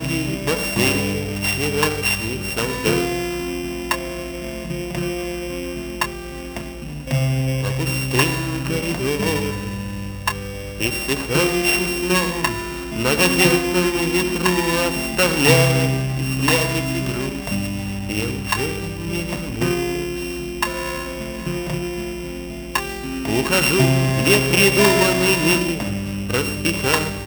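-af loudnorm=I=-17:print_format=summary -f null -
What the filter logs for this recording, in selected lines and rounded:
Input Integrated:    -19.6 LUFS
Input True Peak:      -1.6 dBTP
Input LRA:             7.9 LU
Input Threshold:     -29.7 LUFS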